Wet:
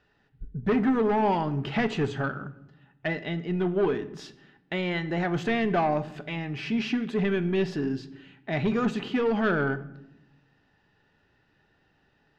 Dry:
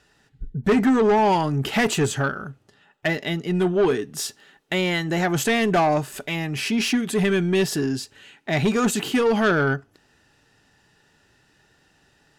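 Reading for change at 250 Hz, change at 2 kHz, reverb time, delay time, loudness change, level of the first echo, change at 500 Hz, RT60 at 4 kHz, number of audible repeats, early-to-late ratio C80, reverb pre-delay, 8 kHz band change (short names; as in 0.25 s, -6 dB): -4.5 dB, -6.5 dB, 0.85 s, none, -5.5 dB, none, -5.5 dB, 0.60 s, none, 18.5 dB, 4 ms, under -20 dB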